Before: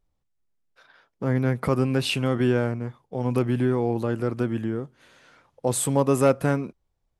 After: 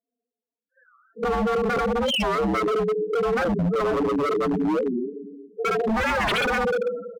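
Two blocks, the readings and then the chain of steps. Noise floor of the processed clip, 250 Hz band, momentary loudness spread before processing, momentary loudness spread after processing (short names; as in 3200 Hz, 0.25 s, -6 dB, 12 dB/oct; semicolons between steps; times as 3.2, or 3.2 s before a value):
under -85 dBFS, -0.5 dB, 11 LU, 6 LU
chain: spectral trails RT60 0.69 s; sample leveller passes 2; pre-echo 62 ms -18 dB; mistuned SSB -53 Hz 280–3400 Hz; air absorption 89 m; comb 4.4 ms, depth 98%; Schroeder reverb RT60 1.5 s, combs from 25 ms, DRR 2 dB; loudest bins only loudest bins 4; in parallel at +2 dB: compressor 12:1, threshold -26 dBFS, peak gain reduction 21 dB; on the sum: dynamic EQ 470 Hz, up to +4 dB, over -25 dBFS, Q 2.3; wavefolder -12.5 dBFS; record warp 45 rpm, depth 250 cents; gain -5.5 dB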